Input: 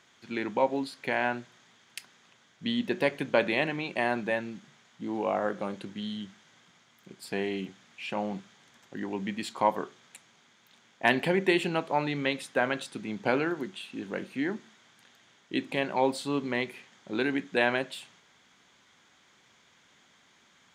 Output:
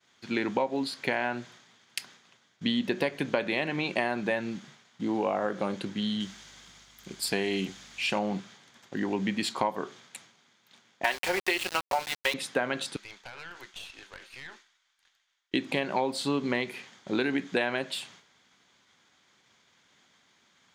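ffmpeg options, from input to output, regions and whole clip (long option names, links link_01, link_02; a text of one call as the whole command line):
ffmpeg -i in.wav -filter_complex "[0:a]asettb=1/sr,asplit=3[link_01][link_02][link_03];[link_01]atrim=end=6.204[link_04];[link_02]atrim=start=6.2:end=8.19,asetpts=PTS-STARTPTS,afade=type=in:duration=0.004:curve=qsin,afade=type=out:start_time=1.986:duration=0.004:curve=qsin,highshelf=frequency=3800:gain=9.5,aeval=exprs='val(0)+0.000398*(sin(2*PI*50*n/s)+sin(2*PI*2*50*n/s)/2+sin(2*PI*3*50*n/s)/3+sin(2*PI*4*50*n/s)/4+sin(2*PI*5*50*n/s)/5)':channel_layout=same[link_05];[link_03]atrim=start=8.186[link_06];[link_04][link_05]acrossfade=duration=0.004:curve1=hsin:curve2=qsin[link_07];[link_07][link_06]acrossfade=duration=0.004:curve1=qsin:curve2=hsin,asettb=1/sr,asplit=3[link_08][link_09][link_10];[link_08]atrim=end=11.044[link_11];[link_09]atrim=start=11.04:end=12.34,asetpts=PTS-STARTPTS,afade=type=in:duration=0.004:curve=qsin,afade=type=out:start_time=1.296:duration=0.004:curve=qsin,highpass=650,aecho=1:1:5.4:0.6,atrim=end_sample=57330,aeval=exprs='val(0)*gte(abs(val(0)),0.0237)':channel_layout=same[link_12];[link_10]atrim=start=12.336[link_13];[link_11][link_12]acrossfade=duration=0.004:curve1=hsin:curve2=qsin[link_14];[link_14][link_13]acrossfade=duration=0.004:curve1=qsin:curve2=hsin,asettb=1/sr,asplit=3[link_15][link_16][link_17];[link_15]atrim=end=12.964[link_18];[link_16]atrim=start=12.96:end=15.54,asetpts=PTS-STARTPTS,afade=type=in:duration=0.004:curve=qsin,afade=type=out:start_time=2.576:duration=0.004:curve=qsin,highpass=1100,acompressor=threshold=-40dB:ratio=8:attack=3.2:release=140:knee=1:detection=peak,aeval=exprs='(tanh(112*val(0)+0.7)-tanh(0.7))/112':channel_layout=same[link_19];[link_17]atrim=start=15.536[link_20];[link_18][link_19]acrossfade=duration=0.004:curve1=hsin:curve2=qsin[link_21];[link_21][link_20]acrossfade=duration=0.004:curve1=qsin:curve2=hsin,acompressor=threshold=-29dB:ratio=10,equalizer=frequency=4600:width_type=o:width=0.57:gain=3.5,agate=range=-33dB:threshold=-54dB:ratio=3:detection=peak,volume=5.5dB" out.wav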